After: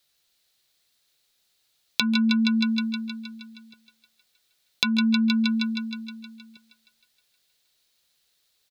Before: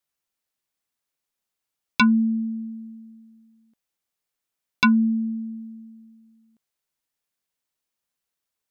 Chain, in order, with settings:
graphic EQ with 15 bands 250 Hz −5 dB, 1,000 Hz −6 dB, 4,000 Hz +11 dB
on a send: feedback echo with a high-pass in the loop 157 ms, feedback 65%, high-pass 450 Hz, level −10.5 dB
on the sum: downward compressor 8 to 1, threshold −30 dBFS, peak gain reduction 17.5 dB
far-end echo of a speakerphone 140 ms, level −17 dB
boost into a limiter +12.5 dB
level −1 dB

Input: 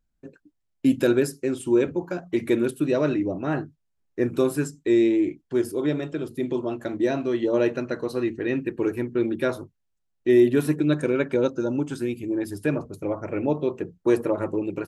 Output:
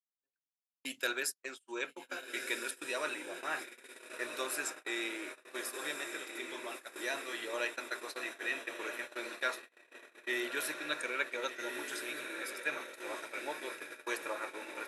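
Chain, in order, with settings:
feedback delay with all-pass diffusion 1,343 ms, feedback 67%, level −6 dB
noise gate −26 dBFS, range −36 dB
high-pass filter 1,400 Hz 12 dB per octave

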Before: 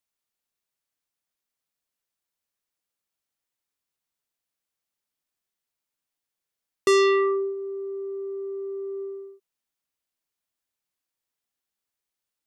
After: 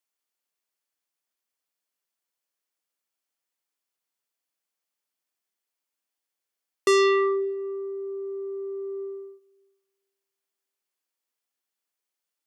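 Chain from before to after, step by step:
high-pass filter 260 Hz
notch filter 3,800 Hz, Q 23
on a send: convolution reverb RT60 1.8 s, pre-delay 28 ms, DRR 21 dB

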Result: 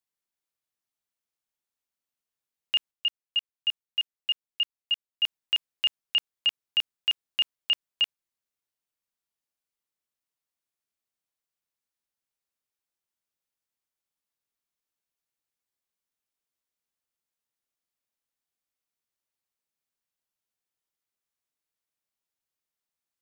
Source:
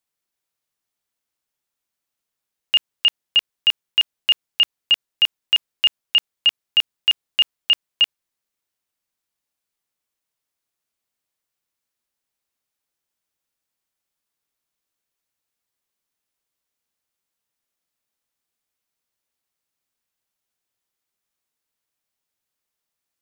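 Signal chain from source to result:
0:02.91–0:05.24: output level in coarse steps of 15 dB
level −8 dB

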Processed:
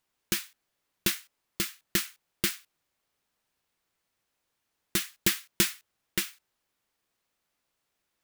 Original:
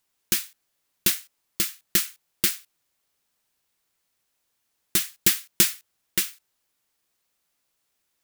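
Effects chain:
high-shelf EQ 4,200 Hz −8.5 dB

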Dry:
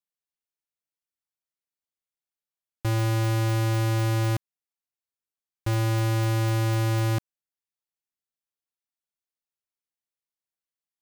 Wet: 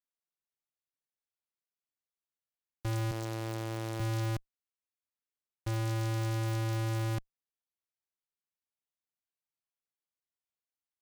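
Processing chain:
0:03.11–0:04.00: high-pass filter 160 Hz 12 dB per octave
tube saturation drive 24 dB, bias 0.55
short delay modulated by noise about 3,600 Hz, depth 0.043 ms
level −4.5 dB

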